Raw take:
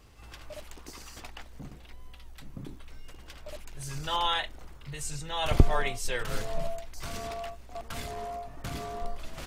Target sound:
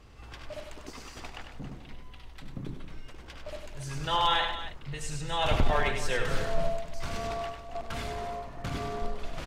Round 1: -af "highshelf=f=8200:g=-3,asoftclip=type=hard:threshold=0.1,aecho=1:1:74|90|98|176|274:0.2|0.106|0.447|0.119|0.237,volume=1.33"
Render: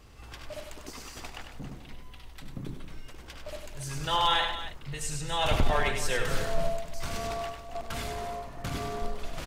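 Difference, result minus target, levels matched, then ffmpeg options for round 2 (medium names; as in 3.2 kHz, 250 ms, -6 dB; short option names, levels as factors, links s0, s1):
8 kHz band +4.5 dB
-af "highshelf=f=8200:g=-15,asoftclip=type=hard:threshold=0.1,aecho=1:1:74|90|98|176|274:0.2|0.106|0.447|0.119|0.237,volume=1.33"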